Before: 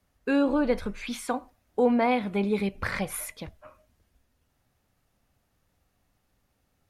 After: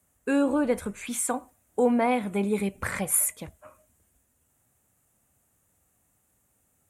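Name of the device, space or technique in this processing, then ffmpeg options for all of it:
budget condenser microphone: -af "highpass=62,highshelf=frequency=6200:width_type=q:width=3:gain=9"

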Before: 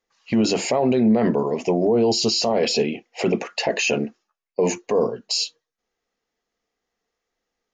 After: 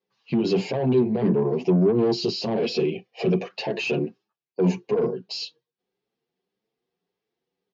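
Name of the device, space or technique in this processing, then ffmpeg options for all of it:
barber-pole flanger into a guitar amplifier: -filter_complex "[0:a]asettb=1/sr,asplit=3[link_01][link_02][link_03];[link_01]atrim=end=2.924[link_04];[link_02]atrim=start=2.92:end=3.51,asetpts=PTS-STARTPTS,afade=type=in:duration=0.004:curve=qsin,afade=type=out:start_time=0.586:duration=0.004:curve=qsin,aecho=1:1:1.7:0.58,atrim=end_sample=26019[link_05];[link_03]atrim=start=3.506[link_06];[link_04][link_05]acrossfade=duration=0.004:curve1=hsin:curve2=qsin[link_07];[link_07][link_06]acrossfade=duration=0.004:curve1=qsin:curve2=hsin,asplit=2[link_08][link_09];[link_09]adelay=7.6,afreqshift=1.7[link_10];[link_08][link_10]amix=inputs=2:normalize=1,asoftclip=type=tanh:threshold=-20dB,highpass=95,equalizer=frequency=130:width_type=q:width=4:gain=10,equalizer=frequency=180:width_type=q:width=4:gain=9,equalizer=frequency=380:width_type=q:width=4:gain=9,equalizer=frequency=620:width_type=q:width=4:gain=-4,equalizer=frequency=1300:width_type=q:width=4:gain=-7,equalizer=frequency=1900:width_type=q:width=4:gain=-7,lowpass=frequency=4600:width=0.5412,lowpass=frequency=4600:width=1.3066"

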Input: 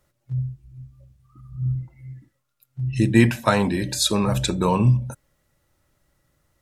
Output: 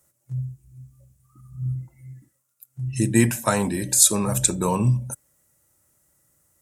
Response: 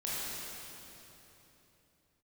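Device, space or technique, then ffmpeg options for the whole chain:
budget condenser microphone: -af "highpass=68,highshelf=frequency=5700:width_type=q:width=1.5:gain=12.5,volume=-2.5dB"

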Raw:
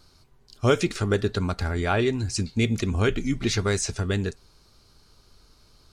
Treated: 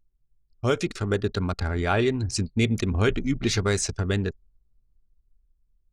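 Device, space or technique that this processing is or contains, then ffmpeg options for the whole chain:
voice memo with heavy noise removal: -af "anlmdn=6.31,dynaudnorm=framelen=260:gausssize=9:maxgain=5dB,volume=-4dB"

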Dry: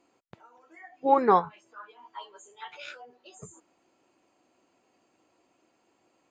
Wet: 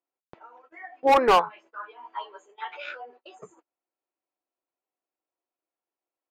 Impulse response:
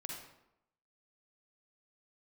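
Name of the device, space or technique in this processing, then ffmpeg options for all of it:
walkie-talkie: -af "highpass=400,lowpass=2500,asoftclip=type=hard:threshold=-21dB,agate=range=-31dB:threshold=-59dB:ratio=16:detection=peak,volume=7.5dB"

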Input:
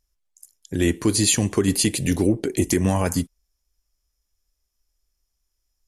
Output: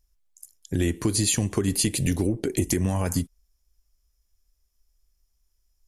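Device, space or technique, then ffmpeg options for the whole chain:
ASMR close-microphone chain: -af "lowshelf=frequency=120:gain=8,acompressor=threshold=-19dB:ratio=5,highshelf=frequency=9900:gain=4.5,volume=-1dB"

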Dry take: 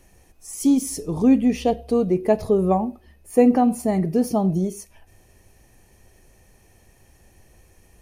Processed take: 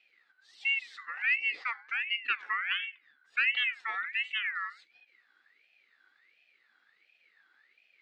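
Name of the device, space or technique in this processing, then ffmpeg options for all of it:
voice changer toy: -af "aeval=exprs='val(0)*sin(2*PI*2000*n/s+2000*0.25/1.4*sin(2*PI*1.4*n/s))':channel_layout=same,highpass=440,equalizer=frequency=630:width_type=q:width=4:gain=-9,equalizer=frequency=990:width_type=q:width=4:gain=-10,equalizer=frequency=1600:width_type=q:width=4:gain=-4,equalizer=frequency=2300:width_type=q:width=4:gain=-4,lowpass=frequency=4000:width=0.5412,lowpass=frequency=4000:width=1.3066,volume=-7dB"

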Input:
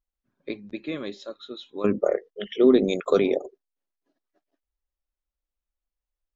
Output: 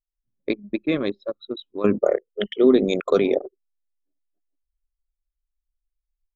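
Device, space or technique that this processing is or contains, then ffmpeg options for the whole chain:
voice memo with heavy noise removal: -af "anlmdn=10,dynaudnorm=framelen=100:gausssize=3:maxgain=14dB,volume=-4.5dB"

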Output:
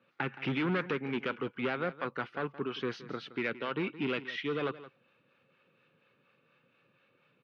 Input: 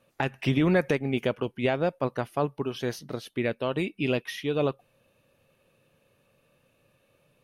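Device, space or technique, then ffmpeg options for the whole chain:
guitar amplifier with harmonic tremolo: -filter_complex "[0:a]highpass=140,acrossover=split=620[link_01][link_02];[link_01]aeval=exprs='val(0)*(1-0.5/2+0.5/2*cos(2*PI*4.2*n/s))':channel_layout=same[link_03];[link_02]aeval=exprs='val(0)*(1-0.5/2-0.5/2*cos(2*PI*4.2*n/s))':channel_layout=same[link_04];[link_03][link_04]amix=inputs=2:normalize=0,asoftclip=type=tanh:threshold=-26.5dB,highpass=81,equalizer=frequency=87:width_type=q:width=4:gain=-7,equalizer=frequency=630:width_type=q:width=4:gain=-9,equalizer=frequency=1400:width_type=q:width=4:gain=9,equalizer=frequency=2200:width_type=q:width=4:gain=4,lowpass=frequency=4000:width=0.5412,lowpass=frequency=4000:width=1.3066,highshelf=frequency=9100:gain=4,aecho=1:1:170:0.168"

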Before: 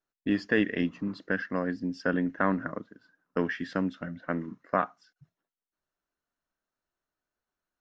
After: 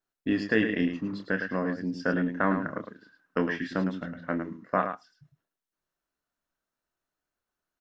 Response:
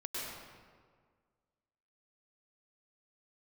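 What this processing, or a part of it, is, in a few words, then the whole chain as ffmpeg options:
slapback doubling: -filter_complex "[0:a]asettb=1/sr,asplit=3[link_01][link_02][link_03];[link_01]atrim=end=2.764[link_04];[link_02]atrim=start=2.76:end=3.39,asetpts=PTS-STARTPTS,afade=type=in:duration=0.004:curve=qsin,afade=type=out:start_time=0.626:duration=0.004:curve=qsin,equalizer=frequency=2400:width_type=o:width=2.1:gain=6[link_05];[link_03]atrim=start=3.386[link_06];[link_04][link_05]acrossfade=duration=0.004:curve1=hsin:curve2=qsin[link_07];[link_07][link_06]acrossfade=duration=0.004:curve1=qsin:curve2=hsin,asplit=3[link_08][link_09][link_10];[link_09]adelay=27,volume=-8dB[link_11];[link_10]adelay=107,volume=-8dB[link_12];[link_08][link_11][link_12]amix=inputs=3:normalize=0"

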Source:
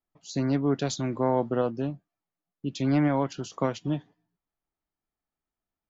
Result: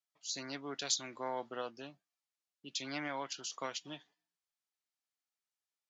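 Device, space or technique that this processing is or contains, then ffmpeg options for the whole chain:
piezo pickup straight into a mixer: -af "lowpass=5800,aderivative,volume=7.5dB"

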